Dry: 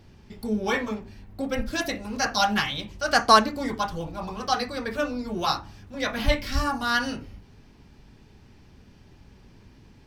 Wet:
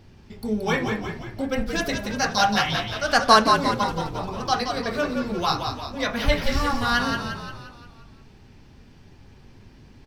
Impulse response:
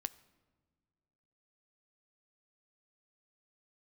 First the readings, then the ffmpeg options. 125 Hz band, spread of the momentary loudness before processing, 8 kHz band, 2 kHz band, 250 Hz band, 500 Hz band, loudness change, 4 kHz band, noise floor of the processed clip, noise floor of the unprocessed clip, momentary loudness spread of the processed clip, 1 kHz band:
+5.0 dB, 13 LU, +2.0 dB, +2.5 dB, +2.5 dB, +3.0 dB, +2.5 dB, +2.5 dB, -50 dBFS, -53 dBFS, 11 LU, +2.5 dB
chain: -filter_complex "[0:a]equalizer=f=12k:w=0.61:g=-2,asplit=8[a][b][c][d][e][f][g][h];[b]adelay=175,afreqshift=-47,volume=-6dB[i];[c]adelay=350,afreqshift=-94,volume=-11.5dB[j];[d]adelay=525,afreqshift=-141,volume=-17dB[k];[e]adelay=700,afreqshift=-188,volume=-22.5dB[l];[f]adelay=875,afreqshift=-235,volume=-28.1dB[m];[g]adelay=1050,afreqshift=-282,volume=-33.6dB[n];[h]adelay=1225,afreqshift=-329,volume=-39.1dB[o];[a][i][j][k][l][m][n][o]amix=inputs=8:normalize=0,asplit=2[p][q];[1:a]atrim=start_sample=2205[r];[q][r]afir=irnorm=-1:irlink=0,volume=12dB[s];[p][s]amix=inputs=2:normalize=0,volume=-11dB"

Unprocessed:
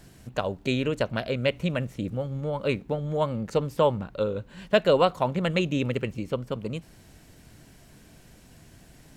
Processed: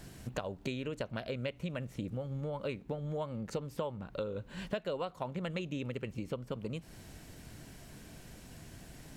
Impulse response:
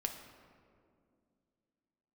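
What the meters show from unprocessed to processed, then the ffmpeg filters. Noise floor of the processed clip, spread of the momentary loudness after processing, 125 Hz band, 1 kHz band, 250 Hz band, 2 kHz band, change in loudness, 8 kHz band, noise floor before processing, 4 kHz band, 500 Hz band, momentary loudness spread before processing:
-55 dBFS, 14 LU, -9.5 dB, -14.0 dB, -10.5 dB, -12.5 dB, -12.0 dB, n/a, -53 dBFS, -12.5 dB, -13.0 dB, 9 LU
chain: -af "acompressor=threshold=-36dB:ratio=6,volume=1dB"

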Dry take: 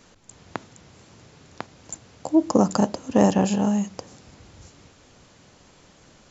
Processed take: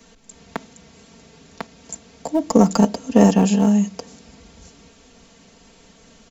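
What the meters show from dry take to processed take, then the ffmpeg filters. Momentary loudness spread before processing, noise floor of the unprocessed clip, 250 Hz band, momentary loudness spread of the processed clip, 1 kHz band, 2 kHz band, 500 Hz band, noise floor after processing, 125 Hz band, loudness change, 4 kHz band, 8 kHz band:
20 LU, -55 dBFS, +5.0 dB, 21 LU, +2.5 dB, +3.0 dB, +3.0 dB, -52 dBFS, +5.5 dB, +4.5 dB, +4.0 dB, n/a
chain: -filter_complex "[0:a]aecho=1:1:4.4:0.84,acrossover=split=150|1100|1300[a][b][c][d];[c]acrusher=bits=4:dc=4:mix=0:aa=0.000001[e];[a][b][e][d]amix=inputs=4:normalize=0,volume=1.5dB"

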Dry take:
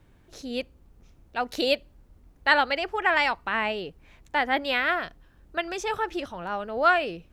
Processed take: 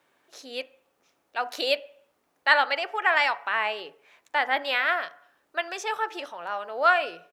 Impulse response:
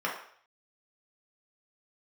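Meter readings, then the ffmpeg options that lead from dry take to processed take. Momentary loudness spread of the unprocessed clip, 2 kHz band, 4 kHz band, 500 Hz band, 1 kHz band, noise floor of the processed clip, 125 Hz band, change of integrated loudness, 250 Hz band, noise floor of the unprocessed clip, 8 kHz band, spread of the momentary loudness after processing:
12 LU, +1.0 dB, +0.5 dB, -2.0 dB, 0.0 dB, -72 dBFS, under -15 dB, +0.5 dB, -11.0 dB, -58 dBFS, n/a, 15 LU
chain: -filter_complex "[0:a]highpass=580,asplit=2[a][b];[b]aecho=1:1:7:0.65[c];[1:a]atrim=start_sample=2205,lowshelf=f=410:g=11[d];[c][d]afir=irnorm=-1:irlink=0,volume=-23.5dB[e];[a][e]amix=inputs=2:normalize=0"

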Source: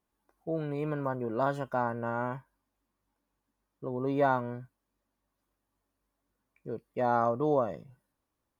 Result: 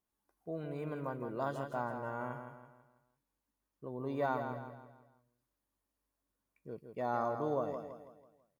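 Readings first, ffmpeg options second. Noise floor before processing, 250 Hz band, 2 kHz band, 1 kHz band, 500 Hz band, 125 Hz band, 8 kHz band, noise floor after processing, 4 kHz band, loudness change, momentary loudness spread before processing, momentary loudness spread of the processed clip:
-84 dBFS, -7.5 dB, -6.5 dB, -7.0 dB, -7.0 dB, -7.0 dB, n/a, under -85 dBFS, -5.0 dB, -7.5 dB, 16 LU, 18 LU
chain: -filter_complex "[0:a]highshelf=f=4.6k:g=6,asplit=2[a][b];[b]aecho=0:1:164|328|492|656|820:0.422|0.177|0.0744|0.0312|0.0131[c];[a][c]amix=inputs=2:normalize=0,volume=-8dB"

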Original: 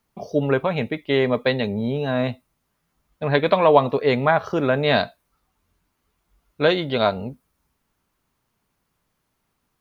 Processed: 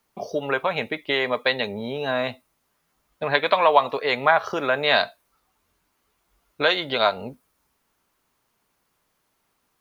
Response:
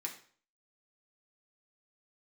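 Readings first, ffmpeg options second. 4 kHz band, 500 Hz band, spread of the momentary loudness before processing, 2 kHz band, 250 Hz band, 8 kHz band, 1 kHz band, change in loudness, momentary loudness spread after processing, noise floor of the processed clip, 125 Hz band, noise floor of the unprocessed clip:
+3.5 dB, -4.0 dB, 9 LU, +3.0 dB, -9.0 dB, n/a, +1.0 dB, -1.5 dB, 11 LU, -72 dBFS, -13.0 dB, -74 dBFS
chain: -filter_complex "[0:a]bass=f=250:g=-9,treble=f=4k:g=1,acrossover=split=690[a][b];[a]acompressor=threshold=-31dB:ratio=6[c];[c][b]amix=inputs=2:normalize=0,volume=3dB"

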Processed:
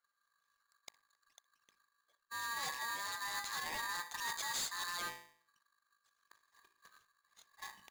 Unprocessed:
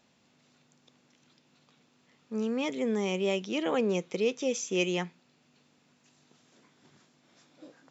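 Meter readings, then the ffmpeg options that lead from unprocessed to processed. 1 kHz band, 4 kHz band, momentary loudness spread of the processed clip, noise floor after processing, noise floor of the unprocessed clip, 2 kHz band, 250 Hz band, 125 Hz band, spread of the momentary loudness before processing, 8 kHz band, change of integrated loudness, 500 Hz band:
-0.5 dB, -3.0 dB, 17 LU, -84 dBFS, -68 dBFS, -1.5 dB, -31.0 dB, -24.0 dB, 6 LU, n/a, -9.0 dB, -28.5 dB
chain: -filter_complex "[0:a]anlmdn=0.000251,highshelf=f=3k:g=5.5,bandreject=f=52.93:t=h:w=4,bandreject=f=105.86:t=h:w=4,bandreject=f=158.79:t=h:w=4,bandreject=f=211.72:t=h:w=4,bandreject=f=264.65:t=h:w=4,bandreject=f=317.58:t=h:w=4,bandreject=f=370.51:t=h:w=4,bandreject=f=423.44:t=h:w=4,bandreject=f=476.37:t=h:w=4,bandreject=f=529.3:t=h:w=4,bandreject=f=582.23:t=h:w=4,bandreject=f=635.16:t=h:w=4,bandreject=f=688.09:t=h:w=4,bandreject=f=741.02:t=h:w=4,bandreject=f=793.95:t=h:w=4,bandreject=f=846.88:t=h:w=4,bandreject=f=899.81:t=h:w=4,bandreject=f=952.74:t=h:w=4,bandreject=f=1.00567k:t=h:w=4,bandreject=f=1.0586k:t=h:w=4,bandreject=f=1.11153k:t=h:w=4,bandreject=f=1.16446k:t=h:w=4,bandreject=f=1.21739k:t=h:w=4,bandreject=f=1.27032k:t=h:w=4,bandreject=f=1.32325k:t=h:w=4,bandreject=f=1.37618k:t=h:w=4,bandreject=f=1.42911k:t=h:w=4,bandreject=f=1.48204k:t=h:w=4,bandreject=f=1.53497k:t=h:w=4,bandreject=f=1.5879k:t=h:w=4,bandreject=f=1.64083k:t=h:w=4,bandreject=f=1.69376k:t=h:w=4,bandreject=f=1.74669k:t=h:w=4,bandreject=f=1.79962k:t=h:w=4,areverse,acompressor=threshold=-41dB:ratio=5,areverse,lowpass=f=5.1k:t=q:w=6.8,aresample=16000,asoftclip=type=hard:threshold=-37.5dB,aresample=44100,asplit=2[a][b];[b]adelay=62,lowpass=f=2k:p=1,volume=-17dB,asplit=2[c][d];[d]adelay=62,lowpass=f=2k:p=1,volume=0.36,asplit=2[e][f];[f]adelay=62,lowpass=f=2k:p=1,volume=0.36[g];[a][c][e][g]amix=inputs=4:normalize=0,aeval=exprs='val(0)*sgn(sin(2*PI*1400*n/s))':c=same,volume=2dB"

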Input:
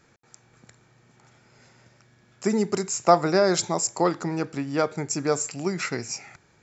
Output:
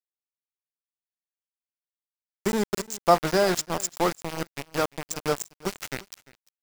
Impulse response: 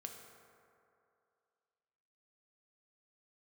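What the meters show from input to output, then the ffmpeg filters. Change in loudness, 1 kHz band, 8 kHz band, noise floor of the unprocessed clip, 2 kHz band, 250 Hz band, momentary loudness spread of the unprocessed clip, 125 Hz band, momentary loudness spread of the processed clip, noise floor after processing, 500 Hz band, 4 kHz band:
-2.0 dB, -1.5 dB, n/a, -61 dBFS, -0.5 dB, -4.5 dB, 10 LU, -4.0 dB, 13 LU, under -85 dBFS, -2.5 dB, -0.5 dB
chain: -filter_complex "[0:a]aeval=exprs='val(0)*gte(abs(val(0)),0.0794)':c=same,asplit=2[a][b];[b]aecho=0:1:346:0.0841[c];[a][c]amix=inputs=2:normalize=0,volume=-1.5dB"

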